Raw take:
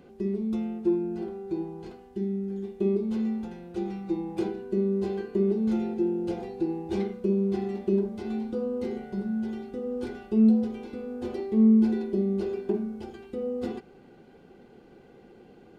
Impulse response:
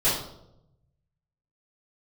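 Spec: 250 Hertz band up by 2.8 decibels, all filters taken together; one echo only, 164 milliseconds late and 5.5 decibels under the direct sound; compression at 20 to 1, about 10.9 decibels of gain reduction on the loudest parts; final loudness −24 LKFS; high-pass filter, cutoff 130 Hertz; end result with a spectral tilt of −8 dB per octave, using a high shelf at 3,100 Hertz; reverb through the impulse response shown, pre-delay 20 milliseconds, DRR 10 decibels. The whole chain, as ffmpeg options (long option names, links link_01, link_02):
-filter_complex "[0:a]highpass=130,equalizer=frequency=250:width_type=o:gain=4,highshelf=frequency=3100:gain=7.5,acompressor=threshold=-23dB:ratio=20,aecho=1:1:164:0.531,asplit=2[link_01][link_02];[1:a]atrim=start_sample=2205,adelay=20[link_03];[link_02][link_03]afir=irnorm=-1:irlink=0,volume=-24dB[link_04];[link_01][link_04]amix=inputs=2:normalize=0,volume=3.5dB"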